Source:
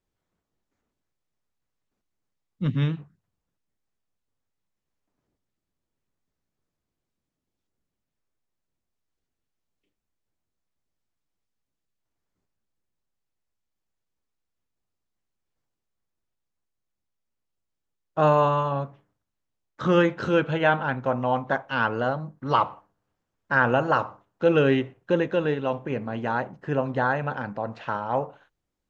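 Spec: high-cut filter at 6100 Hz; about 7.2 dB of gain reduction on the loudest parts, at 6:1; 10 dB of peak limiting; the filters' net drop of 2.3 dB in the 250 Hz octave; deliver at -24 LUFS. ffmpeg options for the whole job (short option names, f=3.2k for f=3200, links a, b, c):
-af "lowpass=6.1k,equalizer=f=250:t=o:g=-3.5,acompressor=threshold=-23dB:ratio=6,volume=9.5dB,alimiter=limit=-13dB:level=0:latency=1"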